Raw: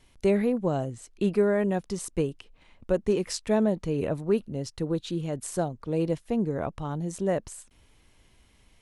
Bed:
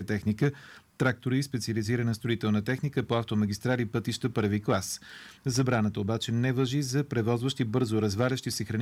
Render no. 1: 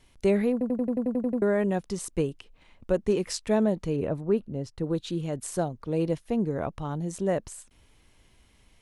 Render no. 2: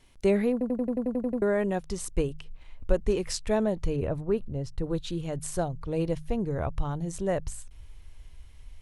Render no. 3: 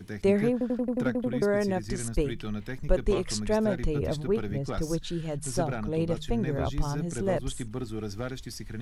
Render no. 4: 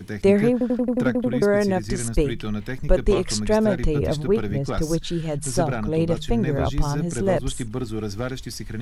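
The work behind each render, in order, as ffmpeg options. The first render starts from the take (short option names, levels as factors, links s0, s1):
-filter_complex "[0:a]asettb=1/sr,asplit=3[s0][s1][s2];[s0]atrim=end=3.964[s3];[s1]atrim=start=3.96:end=4.84,asetpts=PTS-STARTPTS,afade=t=in:d=0.004:c=qsin,afade=t=out:st=0.876:d=0.004:c=qsin,highshelf=f=2200:g=-10[s4];[s2]atrim=start=4.836[s5];[s3][s4]acrossfade=d=0.004:c1=hsin:c2=qsin[s6];[s6][s5]acrossfade=d=0.004:c1=qsin:c2=hsin,asettb=1/sr,asplit=3[s7][s8][s9];[s7]atrim=end=5.544[s10];[s8]atrim=start=5.54:end=7,asetpts=PTS-STARTPTS,afade=t=in:d=0.004:c=qsin,afade=t=out:st=1.456:d=0.004:c=qsin,bandreject=f=7600:w=12[s11];[s9]atrim=start=6.996[s12];[s10][s11]acrossfade=d=0.004:c1=hsin:c2=qsin[s13];[s13][s12]acrossfade=d=0.004:c1=qsin:c2=hsin,asplit=11[s14][s15][s16][s17][s18][s19][s20][s21][s22][s23][s24];[s14]atrim=end=0.612[s25];[s15]atrim=start=0.518:end=0.612[s26];[s16]atrim=start=0.518:end=0.612[s27];[s17]atrim=start=0.518:end=0.612[s28];[s18]atrim=start=0.518:end=0.612[s29];[s19]atrim=start=0.518:end=0.612[s30];[s20]atrim=start=0.518:end=0.612[s31];[s21]atrim=start=0.518:end=0.612[s32];[s22]atrim=start=0.518:end=0.612[s33];[s23]atrim=start=0.518:end=0.612[s34];[s24]atrim=start=1.418[s35];[s25][s26]acrossfade=d=0.004:c1=hsin:c2=hsin[s36];[s36][s27]acrossfade=d=0.004:c1=hsin:c2=hsin[s37];[s37][s28]acrossfade=d=0.004:c1=hsin:c2=hsin[s38];[s38][s29]acrossfade=d=0.004:c1=hsin:c2=hsin[s39];[s39][s30]acrossfade=d=0.004:c1=hsin:c2=hsin[s40];[s40][s31]acrossfade=d=0.004:c1=hsin:c2=hsin[s41];[s41][s32]acrossfade=d=0.004:c1=hsin:c2=hsin[s42];[s42][s33]acrossfade=d=0.004:c1=hsin:c2=hsin[s43];[s43][s34]acrossfade=d=0.004:c1=hsin:c2=hsin[s44];[s44][s35]acrossfade=d=0.004:c1=hsin:c2=hsin"
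-af "bandreject=f=51.56:t=h:w=4,bandreject=f=103.12:t=h:w=4,bandreject=f=154.68:t=h:w=4,asubboost=boost=8.5:cutoff=76"
-filter_complex "[1:a]volume=0.398[s0];[0:a][s0]amix=inputs=2:normalize=0"
-af "volume=2.11,alimiter=limit=0.708:level=0:latency=1"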